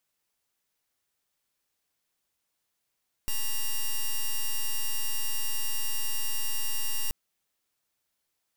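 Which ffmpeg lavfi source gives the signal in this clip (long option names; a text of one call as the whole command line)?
ffmpeg -f lavfi -i "aevalsrc='0.0473*(2*lt(mod(2810*t,1),0.05)-1)':duration=3.83:sample_rate=44100" out.wav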